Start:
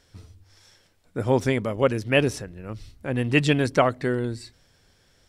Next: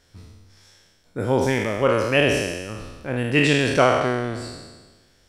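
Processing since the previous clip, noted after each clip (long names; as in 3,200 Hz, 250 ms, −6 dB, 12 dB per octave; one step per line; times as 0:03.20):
peak hold with a decay on every bin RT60 1.36 s
level −1 dB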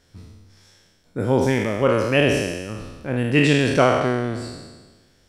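parametric band 190 Hz +4.5 dB 2.3 octaves
level −1 dB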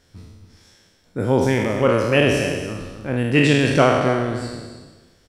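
slap from a distant wall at 47 metres, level −10 dB
level +1 dB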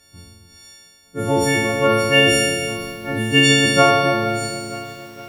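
every partial snapped to a pitch grid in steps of 4 semitones
feedback echo at a low word length 464 ms, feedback 55%, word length 6 bits, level −14 dB
level −1 dB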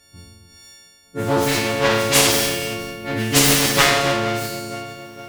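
phase distortion by the signal itself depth 0.56 ms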